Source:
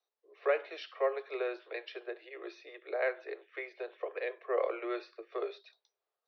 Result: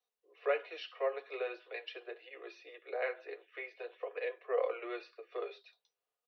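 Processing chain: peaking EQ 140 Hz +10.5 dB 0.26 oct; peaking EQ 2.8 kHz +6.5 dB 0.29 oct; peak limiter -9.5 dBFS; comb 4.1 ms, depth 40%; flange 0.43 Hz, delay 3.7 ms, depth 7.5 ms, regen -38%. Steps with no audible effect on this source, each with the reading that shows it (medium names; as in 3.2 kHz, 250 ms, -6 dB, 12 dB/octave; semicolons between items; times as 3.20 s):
peaking EQ 140 Hz: input has nothing below 300 Hz; peak limiter -9.5 dBFS: peak at its input -17.5 dBFS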